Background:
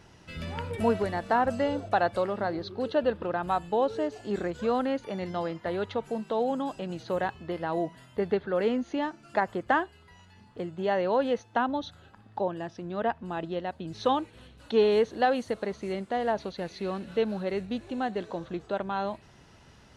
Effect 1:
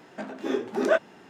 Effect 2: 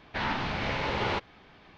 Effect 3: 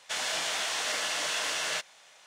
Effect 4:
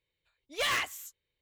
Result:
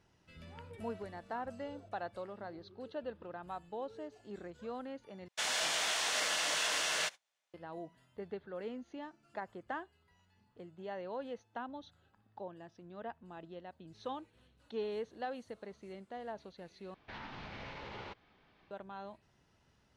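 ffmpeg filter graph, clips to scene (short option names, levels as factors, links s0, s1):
-filter_complex "[0:a]volume=0.158[s0];[3:a]agate=range=0.0398:threshold=0.00224:ratio=16:release=100:detection=peak[s1];[2:a]alimiter=level_in=1.06:limit=0.0631:level=0:latency=1:release=79,volume=0.944[s2];[s0]asplit=3[s3][s4][s5];[s3]atrim=end=5.284[s6];[s1]atrim=end=2.26,asetpts=PTS-STARTPTS,volume=0.75[s7];[s4]atrim=start=7.536:end=16.944[s8];[s2]atrim=end=1.77,asetpts=PTS-STARTPTS,volume=0.224[s9];[s5]atrim=start=18.706[s10];[s6][s7]acrossfade=d=0.004:c1=hsin:c2=hsin[s11];[s11][s8]acrossfade=d=0.004:c1=hsin:c2=hsin[s12];[s12][s9]acrossfade=d=0.004:c1=hsin:c2=hsin[s13];[s13][s10]acrossfade=d=0.004:c1=hsin:c2=hsin"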